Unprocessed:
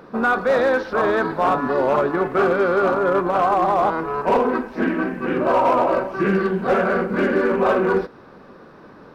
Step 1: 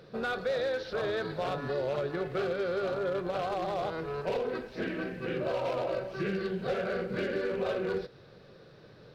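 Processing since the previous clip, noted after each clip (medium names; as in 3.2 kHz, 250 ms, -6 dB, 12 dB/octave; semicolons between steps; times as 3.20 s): graphic EQ 125/250/500/1000/4000 Hz +10/-11/+5/-12/+10 dB; compression 3:1, threshold -21 dBFS, peak gain reduction 5.5 dB; trim -8 dB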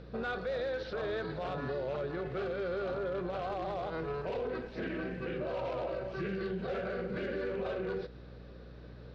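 distance through air 110 m; peak limiter -28.5 dBFS, peak gain reduction 7.5 dB; hum 60 Hz, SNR 14 dB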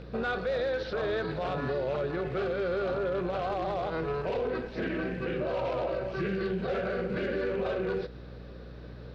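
rattle on loud lows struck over -41 dBFS, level -49 dBFS; trim +5 dB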